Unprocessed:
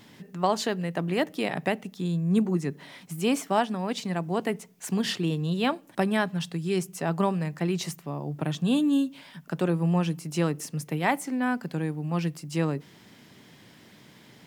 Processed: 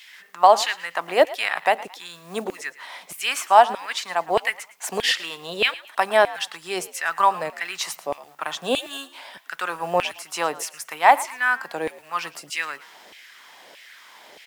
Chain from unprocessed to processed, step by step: companded quantiser 8-bit; LFO high-pass saw down 1.6 Hz 520–2500 Hz; frequency-shifting echo 0.111 s, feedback 32%, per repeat +74 Hz, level -18.5 dB; gain +6.5 dB

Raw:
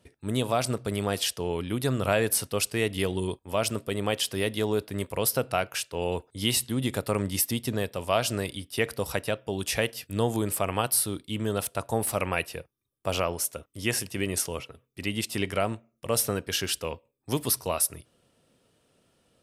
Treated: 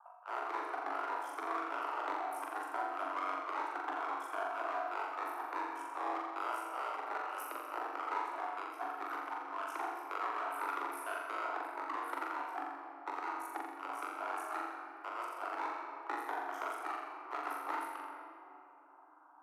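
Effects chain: rattling part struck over -38 dBFS, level -16 dBFS; inverse Chebyshev high-pass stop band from 190 Hz, stop band 60 dB; reverb removal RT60 0.94 s; elliptic low-pass 1100 Hz, stop band 40 dB; auto swell 0.165 s; compressor 6:1, threshold -51 dBFS, peak gain reduction 17.5 dB; one-sided clip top -56 dBFS; ring modulator 28 Hz; frequency shift +270 Hz; on a send: flutter echo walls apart 7.3 m, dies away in 0.81 s; on the sum: shoebox room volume 140 m³, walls hard, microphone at 0.31 m; gain +17.5 dB

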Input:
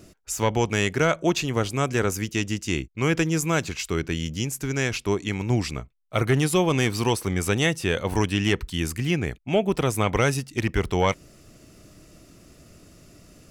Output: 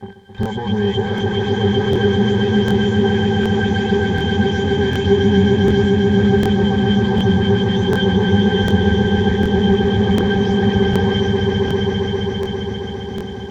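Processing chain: spectral delay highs late, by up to 0.205 s; HPF 55 Hz 12 dB/oct; in parallel at +3 dB: negative-ratio compressor -28 dBFS; on the sum: fuzz box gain 43 dB, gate -38 dBFS; downsampling 16000 Hz; requantised 6-bit, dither triangular; octave resonator G, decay 0.11 s; on a send: swelling echo 0.133 s, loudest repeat 5, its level -6 dB; on the sum: crackling interface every 0.75 s, samples 1024, repeat, from 0.41; gain +3.5 dB

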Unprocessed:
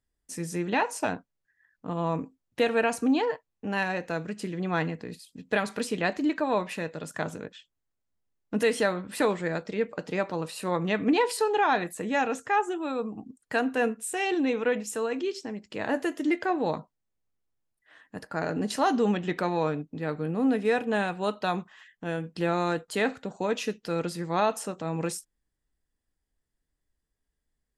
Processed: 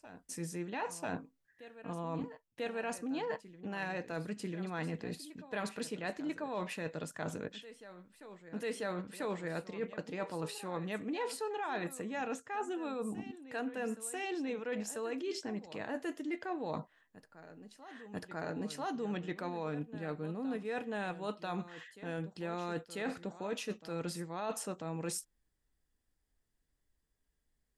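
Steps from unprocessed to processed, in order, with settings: reverse; compressor 6:1, threshold -36 dBFS, peak gain reduction 16 dB; reverse; reverse echo 0.992 s -14.5 dB

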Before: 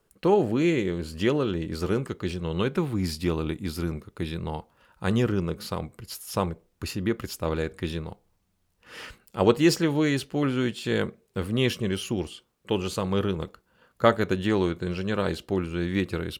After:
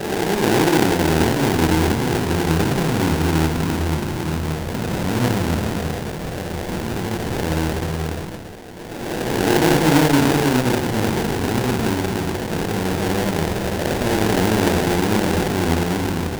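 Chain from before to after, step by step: time blur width 0.845 s; Schroeder reverb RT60 0.7 s, combs from 25 ms, DRR -1.5 dB; sample-rate reducer 1200 Hz, jitter 20%; gain +8.5 dB

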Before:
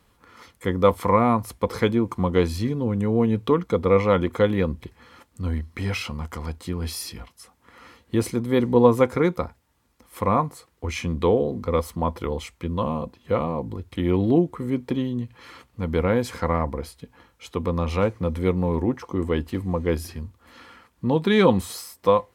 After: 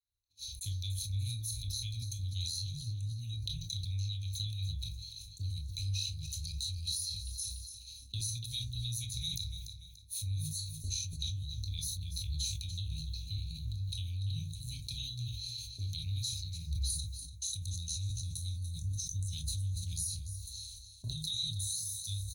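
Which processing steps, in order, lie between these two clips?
Chebyshev band-stop 120–3800 Hz, order 5; bell 2600 Hz +11 dB 0.94 oct, from 16.9 s 8400 Hz; gate -57 dBFS, range -36 dB; harmonic-percussive split harmonic -10 dB; ripple EQ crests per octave 1.5, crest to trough 16 dB; compressor 6:1, threshold -44 dBFS, peak gain reduction 16.5 dB; feedback echo 0.29 s, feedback 34%, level -12.5 dB; reverb RT60 0.35 s, pre-delay 17 ms, DRR 2 dB; sustainer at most 34 dB/s; gain +7 dB

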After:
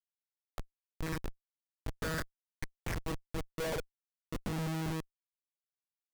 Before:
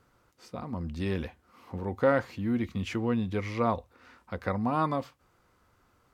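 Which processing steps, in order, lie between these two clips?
bin magnitudes rounded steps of 15 dB; sample leveller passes 2; monotone LPC vocoder at 8 kHz 160 Hz; band-pass sweep 1700 Hz -> 210 Hz, 2.83–4.49; Schmitt trigger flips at -34.5 dBFS; gain +3.5 dB

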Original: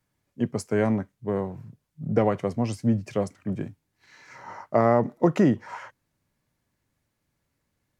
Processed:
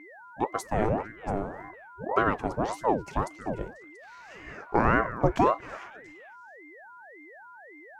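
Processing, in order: delay with a stepping band-pass 0.228 s, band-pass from 910 Hz, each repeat 1.4 oct, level -9.5 dB; whine 1200 Hz -43 dBFS; ring modulator with a swept carrier 550 Hz, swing 65%, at 1.8 Hz

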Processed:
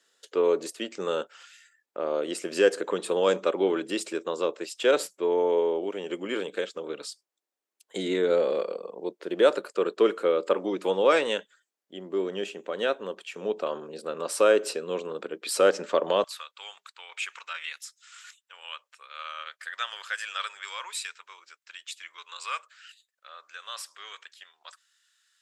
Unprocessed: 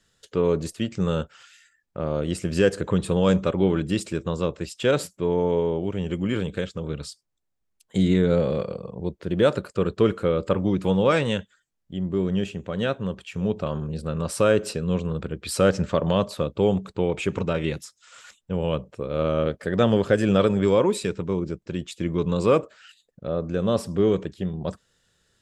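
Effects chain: HPF 330 Hz 24 dB/oct, from 16.24 s 1300 Hz

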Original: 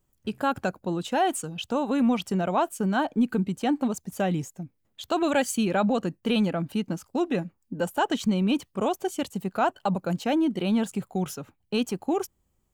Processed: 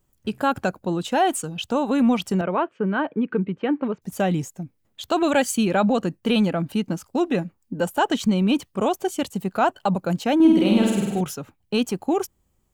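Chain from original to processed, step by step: 2.41–4.02 speaker cabinet 150–2600 Hz, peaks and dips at 240 Hz -5 dB, 440 Hz +4 dB, 750 Hz -10 dB; 10.35–11.21 flutter echo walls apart 8.5 m, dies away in 1.2 s; gain +4 dB

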